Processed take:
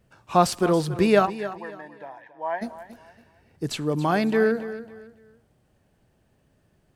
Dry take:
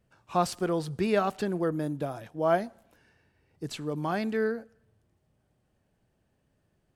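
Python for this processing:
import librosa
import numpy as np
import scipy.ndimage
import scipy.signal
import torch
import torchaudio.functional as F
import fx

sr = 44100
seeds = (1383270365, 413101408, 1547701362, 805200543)

p1 = fx.double_bandpass(x, sr, hz=1300.0, octaves=0.92, at=(1.25, 2.61), fade=0.02)
p2 = p1 + fx.echo_feedback(p1, sr, ms=278, feedback_pct=29, wet_db=-14.0, dry=0)
y = p2 * librosa.db_to_amplitude(7.5)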